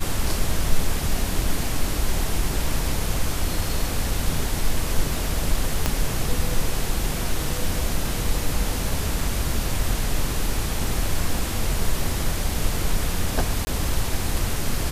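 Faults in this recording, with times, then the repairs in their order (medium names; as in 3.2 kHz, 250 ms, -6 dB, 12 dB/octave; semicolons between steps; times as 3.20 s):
5.86 s: pop -5 dBFS
13.65–13.67 s: dropout 20 ms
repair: de-click; interpolate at 13.65 s, 20 ms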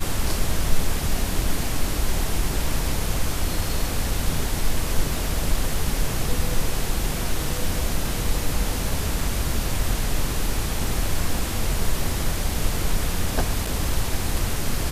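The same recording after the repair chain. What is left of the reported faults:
5.86 s: pop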